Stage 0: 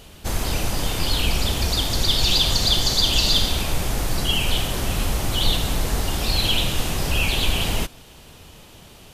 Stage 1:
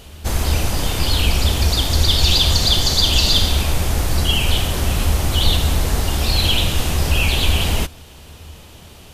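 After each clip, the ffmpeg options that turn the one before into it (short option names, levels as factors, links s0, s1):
-af "equalizer=f=76:w=5.4:g=13,volume=1.41"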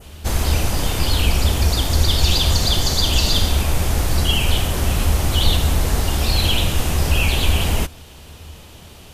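-af "adynamicequalizer=threshold=0.0282:dfrequency=3800:dqfactor=1.3:tfrequency=3800:tqfactor=1.3:attack=5:release=100:ratio=0.375:range=2.5:mode=cutabove:tftype=bell"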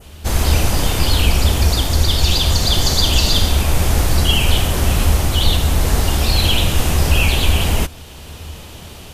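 -af "dynaudnorm=f=190:g=3:m=2"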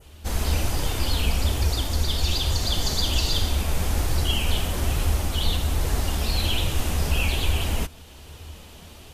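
-af "flanger=delay=2:depth=2.9:regen=-54:speed=1.2:shape=triangular,volume=0.562"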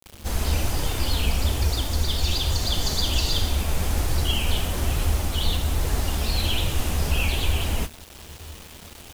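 -af "acrusher=bits=6:mix=0:aa=0.000001"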